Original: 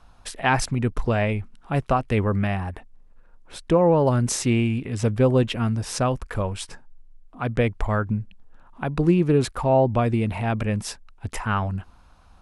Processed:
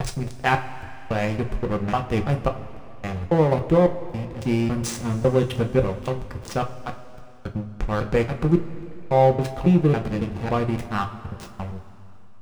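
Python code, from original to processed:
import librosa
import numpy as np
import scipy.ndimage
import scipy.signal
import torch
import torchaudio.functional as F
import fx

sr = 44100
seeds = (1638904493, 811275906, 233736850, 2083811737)

y = fx.block_reorder(x, sr, ms=276.0, group=3)
y = fx.backlash(y, sr, play_db=-20.5)
y = fx.rev_double_slope(y, sr, seeds[0], early_s=0.26, late_s=3.2, knee_db=-18, drr_db=3.5)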